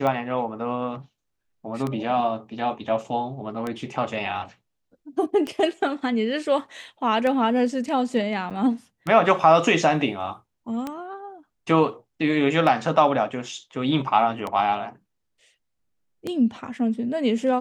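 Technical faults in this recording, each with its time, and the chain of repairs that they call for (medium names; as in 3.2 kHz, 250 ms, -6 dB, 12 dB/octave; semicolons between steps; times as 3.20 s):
tick 33 1/3 rpm -15 dBFS
8.50–8.51 s: dropout 7.6 ms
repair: de-click; interpolate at 8.50 s, 7.6 ms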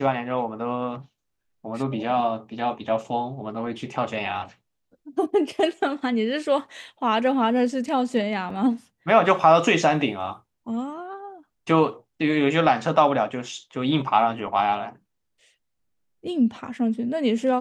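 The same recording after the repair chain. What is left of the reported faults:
nothing left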